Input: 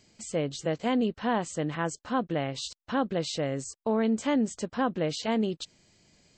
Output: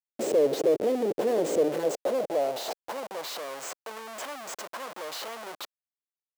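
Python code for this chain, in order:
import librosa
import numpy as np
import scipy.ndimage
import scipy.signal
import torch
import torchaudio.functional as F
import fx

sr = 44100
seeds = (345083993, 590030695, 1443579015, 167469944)

y = fx.schmitt(x, sr, flips_db=-43.0)
y = fx.filter_sweep_highpass(y, sr, from_hz=410.0, to_hz=1100.0, start_s=1.56, end_s=3.47, q=2.3)
y = fx.low_shelf_res(y, sr, hz=760.0, db=11.0, q=1.5)
y = y * librosa.db_to_amplitude(-7.0)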